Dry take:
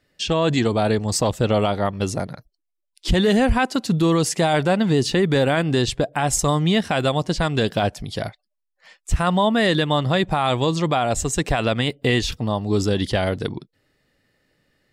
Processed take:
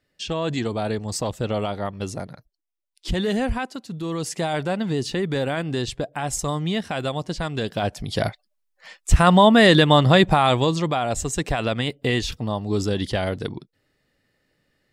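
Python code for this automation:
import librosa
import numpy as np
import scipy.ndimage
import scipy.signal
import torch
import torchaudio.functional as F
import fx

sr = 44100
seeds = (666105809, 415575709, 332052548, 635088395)

y = fx.gain(x, sr, db=fx.line((3.51, -6.0), (3.87, -14.0), (4.34, -6.0), (7.7, -6.0), (8.27, 5.0), (10.25, 5.0), (10.92, -3.0)))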